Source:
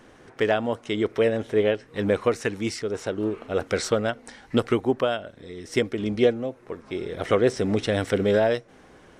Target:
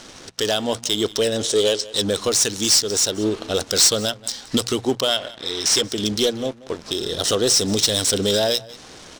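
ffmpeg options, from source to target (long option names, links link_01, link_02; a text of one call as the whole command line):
ffmpeg -i in.wav -filter_complex "[0:a]aexciter=amount=15.7:drive=8.4:freq=3600,acrusher=bits=5:mix=0:aa=0.5,adynamicsmooth=sensitivity=2:basefreq=3000,asettb=1/sr,asplit=3[link_01][link_02][link_03];[link_01]atrim=end=1.434[link_04];[link_02]atrim=start=1.43:end=2.02,asetpts=PTS-STARTPTS,afade=type=in:duration=0.004:curve=qsin,afade=type=out:start_time=0.586:duration=0.004:curve=qsin,equalizer=frequency=125:width_type=o:width=1:gain=-6,equalizer=frequency=500:width_type=o:width=1:gain=6,equalizer=frequency=4000:width_type=o:width=1:gain=5,equalizer=frequency=8000:width_type=o:width=1:gain=12[link_05];[link_03]atrim=start=2.016[link_06];[link_04][link_05]acrossfade=duration=0.004:curve1=hsin:curve2=qsin[link_07];[link_07][link_06]acrossfade=duration=0.004:curve1=qsin:curve2=hsin,asettb=1/sr,asplit=3[link_08][link_09][link_10];[link_08]atrim=end=5.084[link_11];[link_09]atrim=start=5.08:end=5.84,asetpts=PTS-STARTPTS,afade=type=in:duration=0.004:curve=qsin,afade=type=out:start_time=0.756:duration=0.004:curve=qsin,asplit=2[link_12][link_13];[link_13]highpass=frequency=720:poles=1,volume=10dB,asoftclip=type=tanh:threshold=-6dB[link_14];[link_12][link_14]amix=inputs=2:normalize=0,lowpass=frequency=3600:poles=1,volume=-6dB[link_15];[link_10]atrim=start=5.836[link_16];[link_11][link_15]acrossfade=duration=0.004:curve1=hsin:curve2=qsin[link_17];[link_17][link_16]acrossfade=duration=0.004:curve1=qsin:curve2=hsin,asettb=1/sr,asplit=3[link_18][link_19][link_20];[link_18]atrim=end=6.884[link_21];[link_19]atrim=start=6.88:end=7.56,asetpts=PTS-STARTPTS,afade=type=in:duration=0.004:curve=qsin,afade=type=out:start_time=0.676:duration=0.004:curve=qsin,bandreject=frequency=2200:width=7.5[link_22];[link_20]atrim=start=7.556[link_23];[link_21][link_22]acrossfade=duration=0.004:curve1=hsin:curve2=qsin[link_24];[link_24][link_23]acrossfade=duration=0.004:curve1=qsin:curve2=hsin,asoftclip=type=tanh:threshold=-9.5dB,bandreject=frequency=60:width_type=h:width=6,bandreject=frequency=120:width_type=h:width=6,bandreject=frequency=180:width_type=h:width=6,asplit=2[link_25][link_26];[link_26]adelay=180.8,volume=-22dB,highshelf=frequency=4000:gain=-4.07[link_27];[link_25][link_27]amix=inputs=2:normalize=0,alimiter=limit=-17.5dB:level=0:latency=1:release=331,volume=7dB" out.wav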